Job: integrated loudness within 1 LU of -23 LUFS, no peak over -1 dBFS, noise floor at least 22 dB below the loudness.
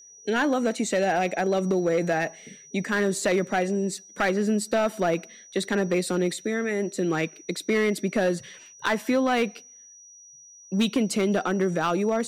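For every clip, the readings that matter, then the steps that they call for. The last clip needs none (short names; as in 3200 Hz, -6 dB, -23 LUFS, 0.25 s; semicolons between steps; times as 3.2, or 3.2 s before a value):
clipped 1.3%; flat tops at -16.5 dBFS; steady tone 5800 Hz; tone level -47 dBFS; loudness -25.5 LUFS; peak -16.5 dBFS; loudness target -23.0 LUFS
-> clip repair -16.5 dBFS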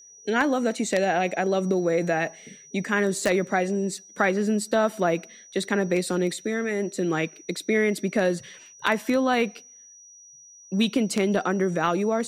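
clipped 0.0%; steady tone 5800 Hz; tone level -47 dBFS
-> notch 5800 Hz, Q 30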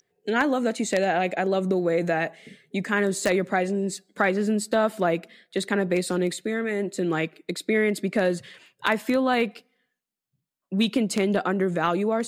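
steady tone none; loudness -25.0 LUFS; peak -7.5 dBFS; loudness target -23.0 LUFS
-> gain +2 dB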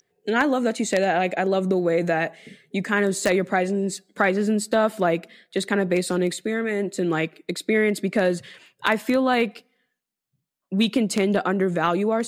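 loudness -23.0 LUFS; peak -5.5 dBFS; noise floor -81 dBFS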